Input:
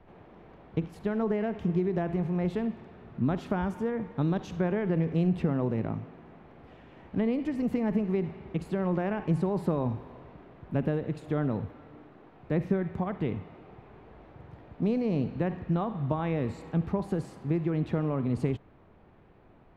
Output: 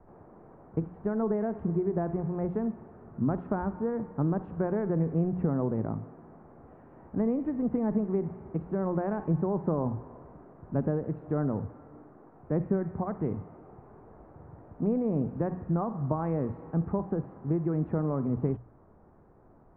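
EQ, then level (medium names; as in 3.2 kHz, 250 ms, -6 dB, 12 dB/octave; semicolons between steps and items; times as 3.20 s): low-pass 1.4 kHz 24 dB/octave; hum notches 60/120/180 Hz; 0.0 dB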